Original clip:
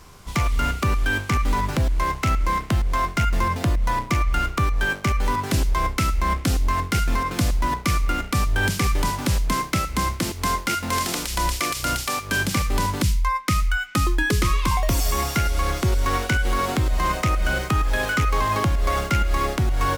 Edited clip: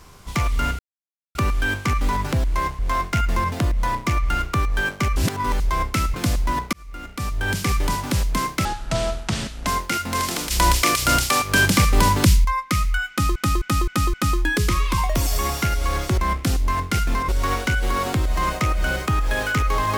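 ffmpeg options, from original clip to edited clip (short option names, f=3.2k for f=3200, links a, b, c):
-filter_complex "[0:a]asplit=17[a][b][c][d][e][f][g][h][i][j][k][l][m][n][o][p][q];[a]atrim=end=0.79,asetpts=PTS-STARTPTS,afade=t=out:st=0.786:d=0.004:c=hsin,apad=pad_dur=0.56[r];[b]atrim=start=0.79:end=2.232,asetpts=PTS-STARTPTS,afade=t=in:d=0.004:c=hsin[s];[c]atrim=start=2.828:end=5.202[t];[d]atrim=start=5.198:end=5.642,asetpts=PTS-STARTPTS,areverse[u];[e]atrim=start=5.638:end=6.182[v];[f]atrim=start=7.288:end=7.88,asetpts=PTS-STARTPTS,afade=t=out:st=0.588:d=0.004:c=hsin[w];[g]atrim=start=7.88:end=9.804,asetpts=PTS-STARTPTS,afade=t=in:d=0.96[x];[h]atrim=start=9.8:end=10.44,asetpts=PTS-STARTPTS,asetrate=27783,aresample=44100[y];[i]atrim=start=10.436:end=11.282[z];[j]atrim=start=11.278:end=13.222,asetpts=PTS-STARTPTS,volume=6dB[aa];[k]atrim=start=13.218:end=14.132[ab];[l]atrim=start=13.868:end=14.132[ac];[m]atrim=start=13.868:end=14.132[ad];[n]atrim=start=13.868:end=14.132[ae];[o]atrim=start=13.868:end=15.912[af];[p]atrim=start=6.178:end=7.292[ag];[q]atrim=start=15.908[ah];[r][s]concat=n=2:v=0:a=1[ai];[ai][t]acrossfade=d=0.004:c1=hsin:c2=hsin[aj];[aj][u]acrossfade=d=0.004:c1=hsin:c2=hsin[ak];[ak][v]acrossfade=d=0.004:c1=hsin:c2=hsin[al];[w][x]concat=n=2:v=0:a=1[am];[al][am]acrossfade=d=0.004:c1=hsin:c2=hsin[an];[an][y]acrossfade=d=0.004:c1=hsin:c2=hsin[ao];[ao][z]acrossfade=d=0.004:c1=hsin:c2=hsin[ap];[ap][aa]acrossfade=d=0.004:c1=hsin:c2=hsin[aq];[aq][ab]acrossfade=d=0.004:c1=hsin:c2=hsin[ar];[ar][ac]acrossfade=d=0.004:c1=hsin:c2=hsin[as];[as][ad]acrossfade=d=0.004:c1=hsin:c2=hsin[at];[at][ae]acrossfade=d=0.004:c1=hsin:c2=hsin[au];[au][af]acrossfade=d=0.004:c1=hsin:c2=hsin[av];[av][ag]acrossfade=d=0.004:c1=hsin:c2=hsin[aw];[aw][ah]acrossfade=d=0.004:c1=hsin:c2=hsin"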